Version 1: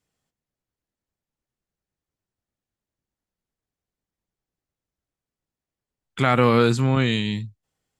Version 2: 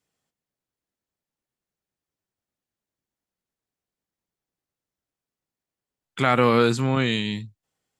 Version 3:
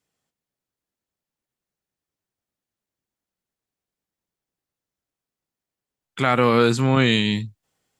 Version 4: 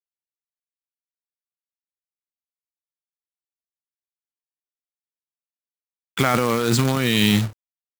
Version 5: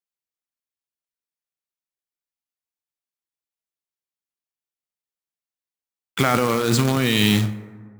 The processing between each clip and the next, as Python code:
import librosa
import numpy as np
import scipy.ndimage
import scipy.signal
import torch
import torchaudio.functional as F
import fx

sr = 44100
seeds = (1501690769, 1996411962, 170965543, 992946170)

y1 = fx.low_shelf(x, sr, hz=100.0, db=-11.0)
y2 = fx.rider(y1, sr, range_db=10, speed_s=0.5)
y2 = F.gain(torch.from_numpy(y2), 3.5).numpy()
y3 = fx.quant_companded(y2, sr, bits=4)
y3 = fx.over_compress(y3, sr, threshold_db=-22.0, ratio=-1.0)
y3 = F.gain(torch.from_numpy(y3), 3.0).numpy()
y4 = fx.rev_plate(y3, sr, seeds[0], rt60_s=1.8, hf_ratio=0.35, predelay_ms=0, drr_db=12.5)